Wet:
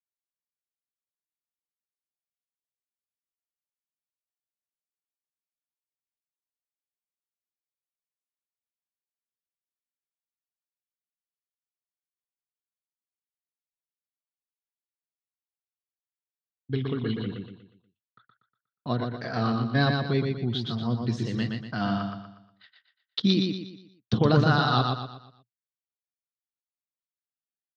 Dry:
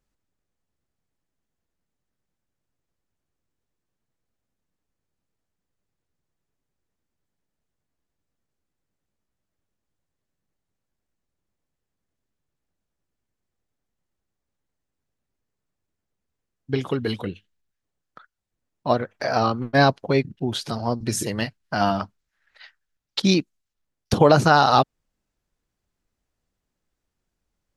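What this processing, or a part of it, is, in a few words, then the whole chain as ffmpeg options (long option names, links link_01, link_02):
guitar cabinet: -filter_complex "[0:a]agate=range=-33dB:threshold=-42dB:ratio=3:detection=peak,asettb=1/sr,asplit=3[link_01][link_02][link_03];[link_01]atrim=end=16.764[link_04];[link_02]atrim=start=16.76:end=17.16,asetpts=PTS-STARTPTS,afade=type=in:duration=0.004:curve=qsin,afade=type=out:start_time=0.396:duration=0.004:curve=qsin,lowpass=frequency=3900:width=0.5412,lowpass=frequency=3900:width=1.3066[link_05];[link_03]atrim=start=17.156[link_06];[link_04][link_05]acrossfade=duration=0.004:curve1=hsin:curve2=qsin[link_07];[link_07][link_06]acrossfade=duration=0.004:curve1=qsin:curve2=hsin,highpass=95,equalizer=frequency=120:width_type=q:width=4:gain=10,equalizer=frequency=220:width_type=q:width=4:gain=6,equalizer=frequency=580:width_type=q:width=4:gain=-8,equalizer=frequency=860:width_type=q:width=4:gain=-9,equalizer=frequency=2400:width_type=q:width=4:gain=-6,equalizer=frequency=3600:width_type=q:width=4:gain=6,lowpass=frequency=4400:width=0.5412,lowpass=frequency=4400:width=1.3066,aecho=1:1:120|240|360|480|600:0.631|0.246|0.096|0.0374|0.0146,volume=-6.5dB"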